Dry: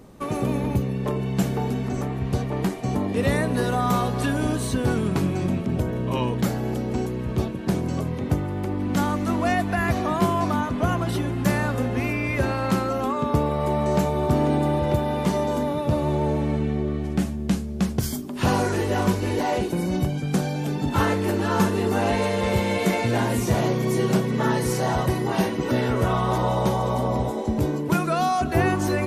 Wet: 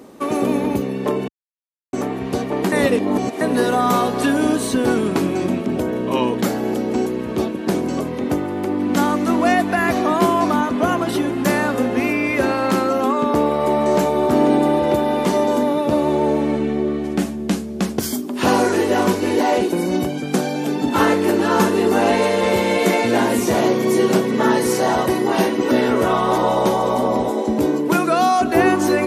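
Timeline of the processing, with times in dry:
1.28–1.93 s: mute
2.72–3.41 s: reverse
11.55–14.35 s: hard clipper -14.5 dBFS
whole clip: high-pass 72 Hz; resonant low shelf 190 Hz -10.5 dB, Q 1.5; trim +6 dB

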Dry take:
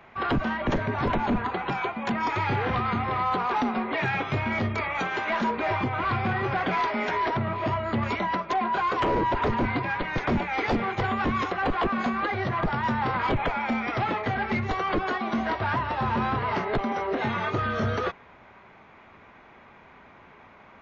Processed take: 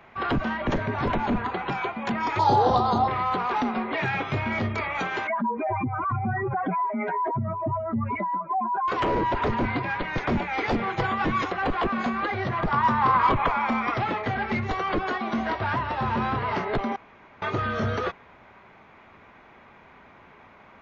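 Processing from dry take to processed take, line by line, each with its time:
2.39–3.08 s: FFT filter 170 Hz 0 dB, 830 Hz +12 dB, 2.3 kHz -19 dB, 3.9 kHz +11 dB
5.27–8.88 s: spectral contrast enhancement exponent 2.4
10.86–11.45 s: comb 6.1 ms, depth 51%
12.71–13.94 s: peaking EQ 1.1 kHz +15 dB 0.32 oct
16.96–17.42 s: room tone

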